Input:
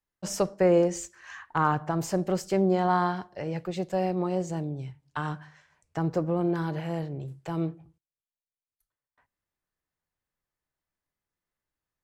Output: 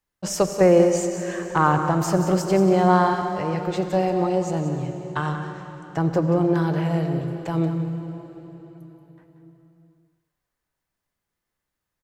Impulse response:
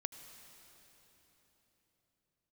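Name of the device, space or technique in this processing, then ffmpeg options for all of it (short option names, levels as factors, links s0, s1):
cave: -filter_complex "[0:a]aecho=1:1:182:0.299[s0];[1:a]atrim=start_sample=2205[s1];[s0][s1]afir=irnorm=-1:irlink=0,volume=2.51"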